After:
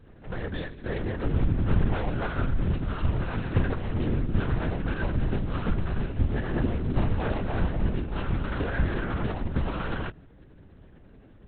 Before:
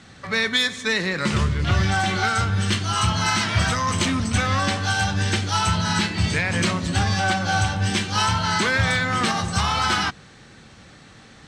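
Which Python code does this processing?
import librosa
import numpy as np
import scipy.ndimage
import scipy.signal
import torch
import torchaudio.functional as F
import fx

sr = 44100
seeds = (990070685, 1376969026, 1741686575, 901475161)

y = scipy.signal.medfilt(x, 41)
y = fx.lpc_vocoder(y, sr, seeds[0], excitation='whisper', order=8)
y = y * librosa.db_to_amplitude(-1.5)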